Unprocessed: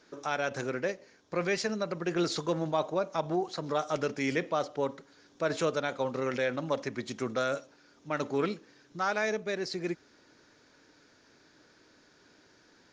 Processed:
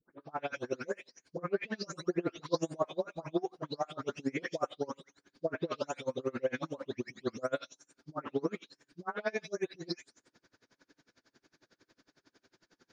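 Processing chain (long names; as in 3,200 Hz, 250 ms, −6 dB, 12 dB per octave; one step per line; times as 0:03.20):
every frequency bin delayed by itself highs late, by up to 369 ms
dynamic equaliser 430 Hz, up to +4 dB, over −38 dBFS, Q 0.79
tremolo with a sine in dB 11 Hz, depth 31 dB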